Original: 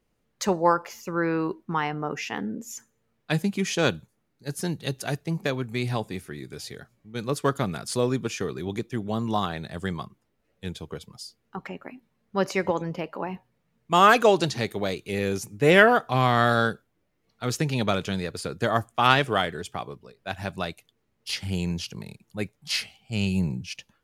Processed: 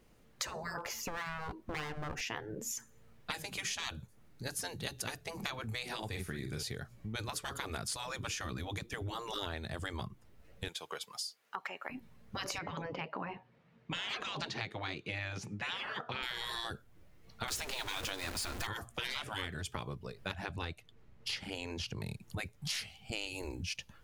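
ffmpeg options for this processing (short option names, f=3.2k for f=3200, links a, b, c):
-filter_complex "[0:a]asettb=1/sr,asplit=3[a][b][c];[a]atrim=end=0.784[d];[b]atrim=start=0.78:end=2.21,asetpts=PTS-STARTPTS,afade=t=in:d=0.004:c=qsin,afade=t=out:st=1.426:d=0.004:c=qsin,aeval=exprs='clip(val(0),-1,0.0188)':c=same[e];[c]atrim=start=2.206[f];[d][e]acrossfade=d=0.004:c1=hsin:c2=qsin[g];[g][f]acrossfade=d=0.004:c1=qsin:c2=hsin,asettb=1/sr,asplit=3[h][i][j];[h]atrim=end=5.984[k];[i]atrim=start=5.98:end=6.63,asetpts=PTS-STARTPTS,afade=t=in:d=0.004:c=qsin,afade=t=out:st=0.646:d=0.004:c=qsin,asplit=2[l][m];[m]adelay=46,volume=-7dB[n];[l][n]amix=inputs=2:normalize=0,atrim=end_sample=28665[o];[j]atrim=start=6.626[p];[k][o]acrossfade=d=0.004:c1=hsin:c2=qsin[q];[q][p]acrossfade=d=0.004:c1=qsin:c2=hsin,asettb=1/sr,asplit=3[r][s][t];[r]atrim=end=10.684[u];[s]atrim=start=10.68:end=11.9,asetpts=PTS-STARTPTS,afade=t=in:d=0.004:c=qsin,afade=t=out:st=1.216:d=0.004:c=qsin,highpass=760[v];[t]atrim=start=11.896[w];[u][v]acrossfade=d=0.004:c1=hsin:c2=qsin[x];[x][w]acrossfade=d=0.004:c1=qsin:c2=hsin,asettb=1/sr,asplit=3[y][z][aa];[y]atrim=end=12.584[ab];[z]atrim=start=12.58:end=16.23,asetpts=PTS-STARTPTS,afade=t=in:d=0.004:c=qsin,afade=t=out:st=3.646:d=0.004:c=qsin,highpass=180,lowpass=3.4k[ac];[aa]atrim=start=16.226[ad];[ab][ac]acrossfade=d=0.004:c1=hsin:c2=qsin[ae];[ae][ad]acrossfade=d=0.004:c1=qsin:c2=hsin,asettb=1/sr,asplit=3[af][ag][ah];[af]atrim=end=17.484[ai];[ag]atrim=start=17.48:end=18.67,asetpts=PTS-STARTPTS,afade=t=in:d=0.004:c=qsin,afade=t=out:st=1.186:d=0.004:c=qsin,aeval=exprs='val(0)+0.5*0.0266*sgn(val(0))':c=same[aj];[ah]atrim=start=18.666[ak];[ai][aj]acrossfade=d=0.004:c1=hsin:c2=qsin[al];[al][ak]acrossfade=d=0.004:c1=qsin:c2=hsin,asettb=1/sr,asplit=3[am][an][ao];[am]atrim=end=20.324[ap];[an]atrim=start=20.32:end=22.02,asetpts=PTS-STARTPTS,afade=t=in:d=0.004:c=qsin,afade=t=out:st=1.696:d=0.004:c=qsin,lowpass=f=3k:p=1[aq];[ao]atrim=start=22.016[ar];[ap][aq]acrossfade=d=0.004:c1=hsin:c2=qsin[as];[as][ar]acrossfade=d=0.004:c1=qsin:c2=hsin,afftfilt=real='re*lt(hypot(re,im),0.112)':imag='im*lt(hypot(re,im),0.112)':win_size=1024:overlap=0.75,asubboost=boost=2.5:cutoff=140,acompressor=threshold=-47dB:ratio=4,volume=8.5dB"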